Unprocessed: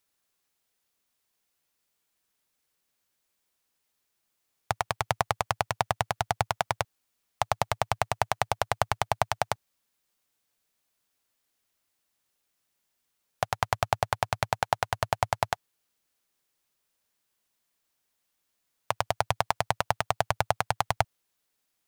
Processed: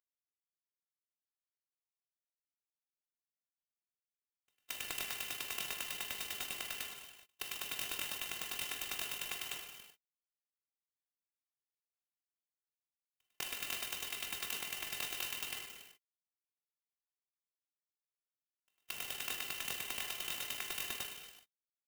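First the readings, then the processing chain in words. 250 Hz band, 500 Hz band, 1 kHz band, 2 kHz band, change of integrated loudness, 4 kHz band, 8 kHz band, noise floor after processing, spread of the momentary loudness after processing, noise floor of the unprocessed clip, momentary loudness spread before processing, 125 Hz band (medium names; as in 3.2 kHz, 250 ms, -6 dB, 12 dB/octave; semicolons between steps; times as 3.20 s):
-13.5 dB, -23.0 dB, -24.0 dB, -8.5 dB, -9.0 dB, -3.0 dB, -2.0 dB, under -85 dBFS, 8 LU, -79 dBFS, 5 LU, -27.0 dB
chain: robot voice 328 Hz; frequency inversion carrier 3.7 kHz; pre-echo 223 ms -16 dB; level held to a coarse grid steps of 21 dB; gated-style reverb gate 460 ms falling, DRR 0 dB; gate -60 dBFS, range -18 dB; high-pass 210 Hz; sampling jitter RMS 0.052 ms; trim +2 dB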